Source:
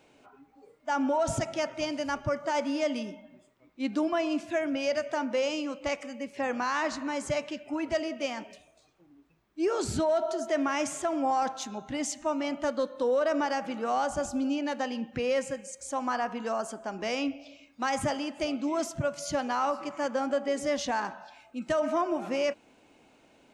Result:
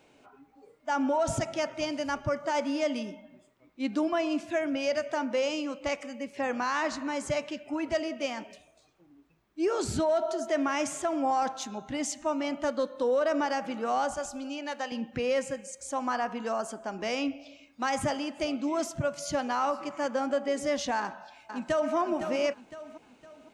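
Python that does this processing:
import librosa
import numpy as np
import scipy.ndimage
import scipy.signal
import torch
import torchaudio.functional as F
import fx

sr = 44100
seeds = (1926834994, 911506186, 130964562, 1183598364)

y = fx.peak_eq(x, sr, hz=130.0, db=-14.5, octaves=2.7, at=(14.14, 14.92))
y = fx.echo_throw(y, sr, start_s=20.98, length_s=0.97, ms=510, feedback_pct=40, wet_db=-8.5)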